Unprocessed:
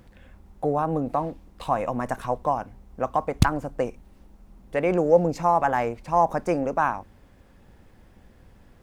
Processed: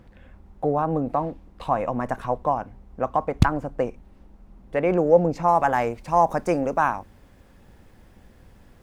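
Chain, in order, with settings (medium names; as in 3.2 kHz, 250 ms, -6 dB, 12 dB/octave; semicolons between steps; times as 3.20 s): treble shelf 4.4 kHz -10.5 dB, from 5.48 s +2.5 dB; trim +1.5 dB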